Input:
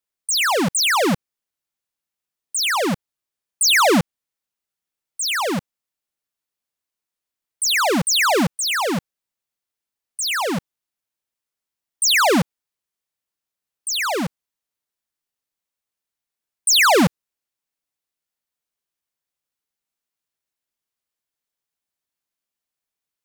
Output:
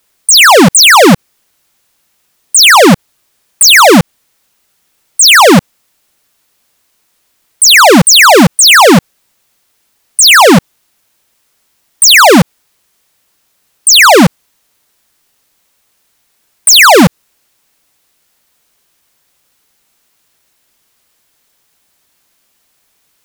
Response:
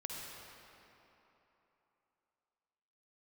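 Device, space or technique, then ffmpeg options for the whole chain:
loud club master: -af "acompressor=threshold=-19dB:ratio=2,asoftclip=type=hard:threshold=-18.5dB,alimiter=level_in=29.5dB:limit=-1dB:release=50:level=0:latency=1,volume=-1dB"

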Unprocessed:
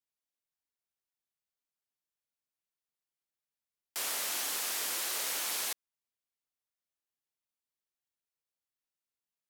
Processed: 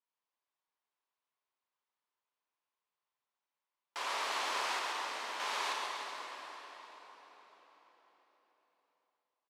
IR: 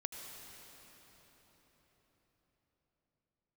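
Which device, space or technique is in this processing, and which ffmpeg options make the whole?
station announcement: -filter_complex "[0:a]asettb=1/sr,asplit=3[link_01][link_02][link_03];[link_01]atrim=end=4.794[link_04];[link_02]atrim=start=4.79:end=5.4,asetpts=PTS-STARTPTS,afade=type=in:duration=0.004:curve=qsin,afade=type=out:start_time=0.606:duration=0.004:curve=qsin,agate=range=-33dB:threshold=-27dB:ratio=3:detection=peak[link_05];[link_03]atrim=start=5.396[link_06];[link_04][link_05]acrossfade=duration=0.004:curve1=hsin:curve2=qsin[link_07];[link_07][link_06]acrossfade=duration=0.004:curve1=qsin:curve2=hsin,highpass=330,lowpass=3700,equalizer=frequency=1000:width_type=o:width=0.56:gain=10,aecho=1:1:55.39|134.1:0.355|0.562[link_08];[1:a]atrim=start_sample=2205[link_09];[link_08][link_09]afir=irnorm=-1:irlink=0,asplit=2[link_10][link_11];[link_11]adelay=297,lowpass=frequency=2000:poles=1,volume=-9dB,asplit=2[link_12][link_13];[link_13]adelay=297,lowpass=frequency=2000:poles=1,volume=0.52,asplit=2[link_14][link_15];[link_15]adelay=297,lowpass=frequency=2000:poles=1,volume=0.52,asplit=2[link_16][link_17];[link_17]adelay=297,lowpass=frequency=2000:poles=1,volume=0.52,asplit=2[link_18][link_19];[link_19]adelay=297,lowpass=frequency=2000:poles=1,volume=0.52,asplit=2[link_20][link_21];[link_21]adelay=297,lowpass=frequency=2000:poles=1,volume=0.52[link_22];[link_10][link_12][link_14][link_16][link_18][link_20][link_22]amix=inputs=7:normalize=0,volume=2.5dB"

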